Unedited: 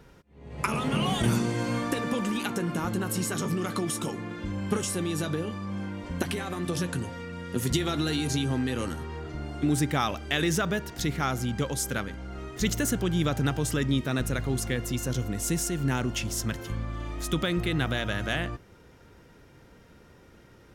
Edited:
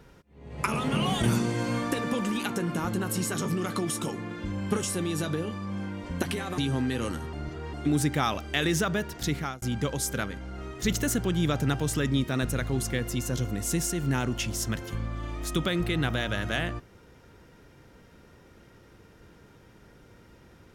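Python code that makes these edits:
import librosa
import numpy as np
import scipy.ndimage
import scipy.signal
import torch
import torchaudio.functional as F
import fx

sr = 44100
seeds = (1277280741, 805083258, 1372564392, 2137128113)

y = fx.edit(x, sr, fx.cut(start_s=6.58, length_s=1.77),
    fx.reverse_span(start_s=9.1, length_s=0.4),
    fx.fade_out_span(start_s=11.12, length_s=0.27), tone=tone)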